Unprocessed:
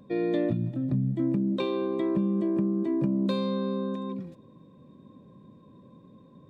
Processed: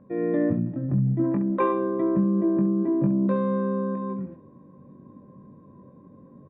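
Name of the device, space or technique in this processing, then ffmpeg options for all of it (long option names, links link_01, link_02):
action camera in a waterproof case: -filter_complex "[0:a]asplit=3[link_01][link_02][link_03];[link_01]afade=type=out:start_time=1.23:duration=0.02[link_04];[link_02]equalizer=frequency=125:width_type=o:width=1:gain=-8,equalizer=frequency=1000:width_type=o:width=1:gain=8,equalizer=frequency=2000:width_type=o:width=1:gain=8,afade=type=in:start_time=1.23:duration=0.02,afade=type=out:start_time=1.71:duration=0.02[link_05];[link_03]afade=type=in:start_time=1.71:duration=0.02[link_06];[link_04][link_05][link_06]amix=inputs=3:normalize=0,lowpass=frequency=1800:width=0.5412,lowpass=frequency=1800:width=1.3066,aecho=1:1:21|68:0.596|0.335,dynaudnorm=framelen=120:gausssize=3:maxgain=3.5dB,volume=-1.5dB" -ar 48000 -c:a aac -b:a 96k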